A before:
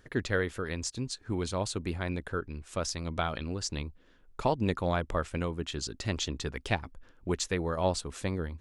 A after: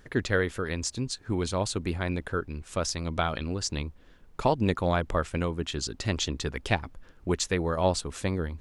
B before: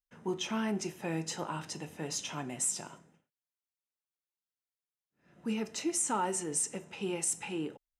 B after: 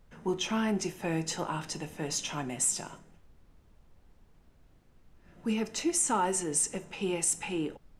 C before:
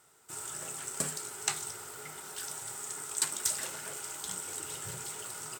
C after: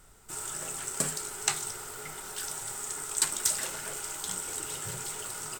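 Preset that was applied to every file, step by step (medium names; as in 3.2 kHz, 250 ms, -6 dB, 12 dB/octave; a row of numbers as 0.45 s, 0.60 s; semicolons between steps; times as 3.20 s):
added noise brown -61 dBFS; trim +3.5 dB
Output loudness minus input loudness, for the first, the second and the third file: +3.5 LU, +3.5 LU, +3.5 LU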